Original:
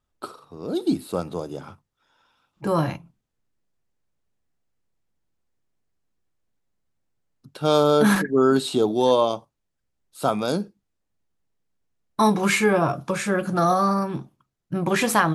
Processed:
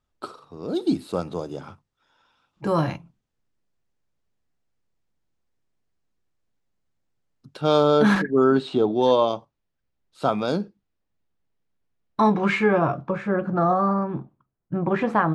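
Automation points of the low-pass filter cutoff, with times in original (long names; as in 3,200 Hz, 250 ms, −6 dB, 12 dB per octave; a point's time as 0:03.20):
7,400 Hz
from 0:07.61 4,500 Hz
from 0:08.44 2,700 Hz
from 0:09.02 4,400 Hz
from 0:12.20 2,400 Hz
from 0:13.01 1,400 Hz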